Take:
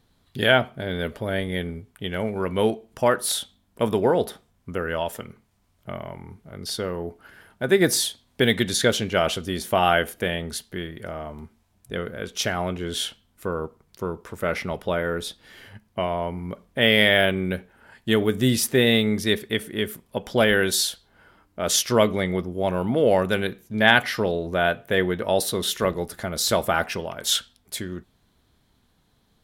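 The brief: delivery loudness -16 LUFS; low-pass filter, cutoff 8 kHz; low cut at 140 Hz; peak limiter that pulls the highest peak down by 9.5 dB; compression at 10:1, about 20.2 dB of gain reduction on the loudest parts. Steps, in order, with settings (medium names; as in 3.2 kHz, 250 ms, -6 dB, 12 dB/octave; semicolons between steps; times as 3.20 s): high-pass 140 Hz; low-pass 8 kHz; compression 10:1, threshold -33 dBFS; trim +24 dB; peak limiter -2.5 dBFS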